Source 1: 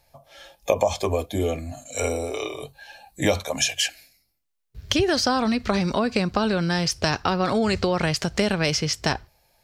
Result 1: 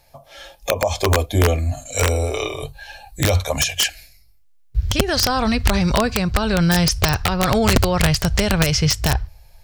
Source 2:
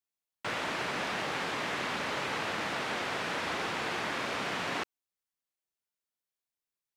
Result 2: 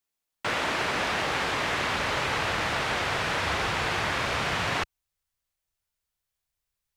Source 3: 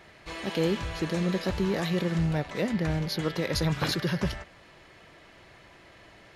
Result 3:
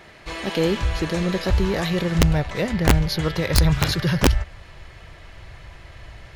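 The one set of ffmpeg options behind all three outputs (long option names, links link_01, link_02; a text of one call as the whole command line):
ffmpeg -i in.wav -af "asubboost=boost=11:cutoff=79,alimiter=limit=-12.5dB:level=0:latency=1:release=245,aeval=exprs='(mod(5.01*val(0)+1,2)-1)/5.01':channel_layout=same,volume=6.5dB" out.wav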